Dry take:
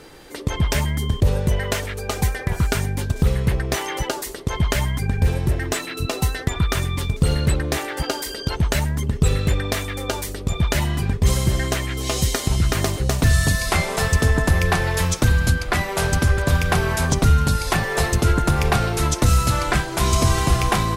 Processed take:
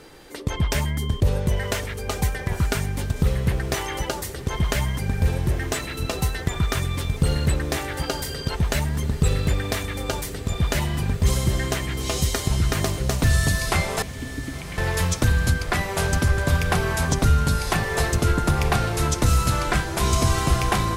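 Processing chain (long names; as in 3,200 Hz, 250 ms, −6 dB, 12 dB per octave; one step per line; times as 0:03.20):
0:14.02–0:14.78: formant filter i
feedback delay with all-pass diffusion 1,003 ms, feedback 77%, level −15.5 dB
level −2.5 dB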